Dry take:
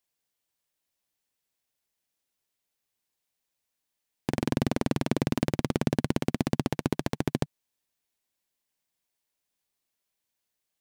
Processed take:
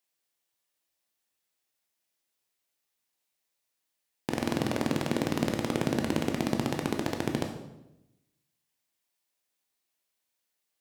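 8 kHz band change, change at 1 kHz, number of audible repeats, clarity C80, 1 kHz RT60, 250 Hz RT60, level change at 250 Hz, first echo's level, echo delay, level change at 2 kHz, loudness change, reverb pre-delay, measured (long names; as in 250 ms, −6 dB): +1.5 dB, +1.0 dB, no echo audible, 9.0 dB, 0.80 s, 1.2 s, −1.0 dB, no echo audible, no echo audible, +1.5 dB, −1.0 dB, 14 ms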